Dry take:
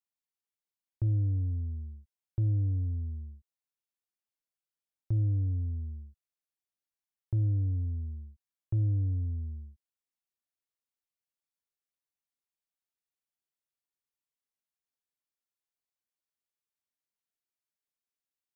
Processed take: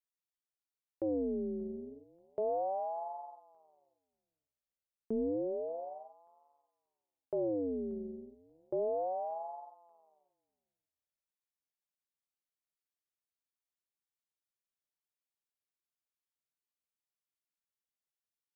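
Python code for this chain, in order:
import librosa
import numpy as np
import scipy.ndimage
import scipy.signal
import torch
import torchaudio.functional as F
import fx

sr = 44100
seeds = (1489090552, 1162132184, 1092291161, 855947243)

y = fx.echo_thinned(x, sr, ms=584, feedback_pct=23, hz=420.0, wet_db=-12)
y = fx.ring_lfo(y, sr, carrier_hz=540.0, swing_pct=45, hz=0.31)
y = y * 10.0 ** (-3.5 / 20.0)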